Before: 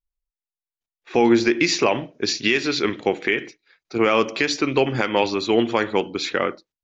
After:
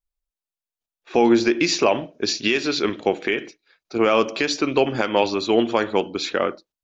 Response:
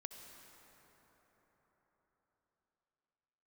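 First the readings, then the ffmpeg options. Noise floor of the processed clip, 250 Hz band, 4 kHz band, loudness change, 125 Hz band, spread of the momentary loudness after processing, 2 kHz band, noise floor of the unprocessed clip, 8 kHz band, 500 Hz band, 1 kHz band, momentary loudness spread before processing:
below −85 dBFS, 0.0 dB, 0.0 dB, 0.0 dB, −3.0 dB, 7 LU, −2.5 dB, below −85 dBFS, can't be measured, +0.5 dB, +0.5 dB, 7 LU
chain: -af "equalizer=frequency=125:width_type=o:width=0.33:gain=-6,equalizer=frequency=630:width_type=o:width=0.33:gain=4,equalizer=frequency=2000:width_type=o:width=0.33:gain=-6"

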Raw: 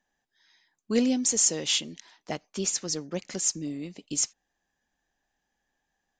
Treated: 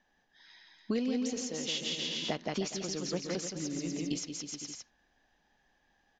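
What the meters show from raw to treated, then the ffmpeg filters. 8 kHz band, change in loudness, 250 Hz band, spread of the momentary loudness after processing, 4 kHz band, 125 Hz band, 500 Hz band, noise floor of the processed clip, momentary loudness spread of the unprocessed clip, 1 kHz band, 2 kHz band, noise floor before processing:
−13.0 dB, −7.5 dB, −4.0 dB, 7 LU, −4.0 dB, −1.0 dB, −3.5 dB, −73 dBFS, 14 LU, −1.0 dB, −2.5 dB, −82 dBFS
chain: -filter_complex "[0:a]asplit=2[link_01][link_02];[link_02]aecho=0:1:170|306|414.8|501.8|571.5:0.631|0.398|0.251|0.158|0.1[link_03];[link_01][link_03]amix=inputs=2:normalize=0,acompressor=threshold=-37dB:ratio=6,lowpass=frequency=5300:width=0.5412,lowpass=frequency=5300:width=1.3066,volume=6.5dB"

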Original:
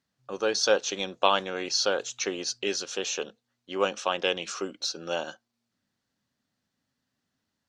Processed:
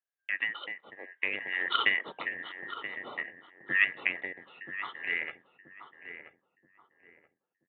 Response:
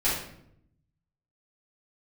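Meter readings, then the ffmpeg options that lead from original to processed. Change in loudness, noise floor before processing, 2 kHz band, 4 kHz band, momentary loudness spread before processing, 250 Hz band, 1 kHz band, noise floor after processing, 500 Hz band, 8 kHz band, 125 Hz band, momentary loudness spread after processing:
−3.5 dB, −82 dBFS, +5.5 dB, −8.5 dB, 9 LU, −13.0 dB, −9.0 dB, below −85 dBFS, −19.5 dB, below −40 dB, below −10 dB, 20 LU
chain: -filter_complex "[0:a]afftfilt=real='real(if(lt(b,272),68*(eq(floor(b/68),0)*2+eq(floor(b/68),1)*0+eq(floor(b/68),2)*3+eq(floor(b/68),3)*1)+mod(b,68),b),0)':imag='imag(if(lt(b,272),68*(eq(floor(b/68),0)*2+eq(floor(b/68),1)*0+eq(floor(b/68),2)*3+eq(floor(b/68),3)*1)+mod(b,68),b),0)':win_size=2048:overlap=0.75,agate=range=-23dB:threshold=-53dB:ratio=16:detection=peak,highpass=260,acompressor=threshold=-35dB:ratio=3,tremolo=f=0.54:d=0.82,adynamicsmooth=sensitivity=1.5:basefreq=1300,asplit=2[link_01][link_02];[link_02]adelay=979,lowpass=frequency=1100:poles=1,volume=-7dB,asplit=2[link_03][link_04];[link_04]adelay=979,lowpass=frequency=1100:poles=1,volume=0.36,asplit=2[link_05][link_06];[link_06]adelay=979,lowpass=frequency=1100:poles=1,volume=0.36,asplit=2[link_07][link_08];[link_08]adelay=979,lowpass=frequency=1100:poles=1,volume=0.36[link_09];[link_03][link_05][link_07][link_09]amix=inputs=4:normalize=0[link_10];[link_01][link_10]amix=inputs=2:normalize=0,crystalizer=i=6.5:c=0,aresample=8000,aresample=44100,volume=8dB"

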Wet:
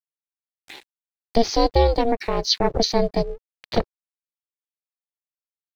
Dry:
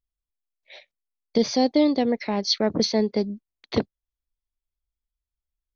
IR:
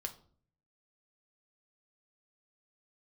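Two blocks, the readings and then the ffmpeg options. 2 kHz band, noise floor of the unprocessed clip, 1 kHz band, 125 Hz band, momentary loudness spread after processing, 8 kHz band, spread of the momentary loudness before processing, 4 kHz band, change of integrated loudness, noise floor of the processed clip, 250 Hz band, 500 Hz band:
+2.0 dB, below −85 dBFS, +7.5 dB, +7.5 dB, 9 LU, can't be measured, 9 LU, +2.5 dB, +1.5 dB, below −85 dBFS, −3.5 dB, +3.0 dB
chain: -af "aeval=exprs='sgn(val(0))*max(abs(val(0))-0.00237,0)':channel_layout=same,aeval=exprs='val(0)*sin(2*PI*230*n/s)':channel_layout=same,acompressor=mode=upward:threshold=-39dB:ratio=2.5,volume=5.5dB"

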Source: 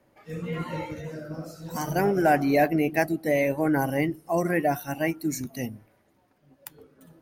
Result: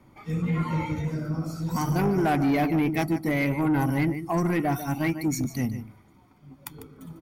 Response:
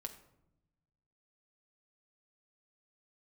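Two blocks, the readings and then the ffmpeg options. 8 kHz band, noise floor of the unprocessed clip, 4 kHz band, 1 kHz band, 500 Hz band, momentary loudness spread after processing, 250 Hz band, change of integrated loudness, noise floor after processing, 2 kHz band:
0.0 dB, −66 dBFS, +1.0 dB, −2.0 dB, −5.0 dB, 13 LU, +2.5 dB, 0.0 dB, −57 dBFS, −2.5 dB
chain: -filter_complex "[0:a]lowshelf=frequency=390:gain=4.5,aecho=1:1:0.9:0.62,asplit=2[link_01][link_02];[link_02]acompressor=threshold=-33dB:ratio=6,volume=1dB[link_03];[link_01][link_03]amix=inputs=2:normalize=0,highshelf=frequency=8100:gain=-4.5,asplit=2[link_04][link_05];[link_05]aecho=0:1:148:0.224[link_06];[link_04][link_06]amix=inputs=2:normalize=0,asoftclip=type=tanh:threshold=-16.5dB,volume=-1.5dB"

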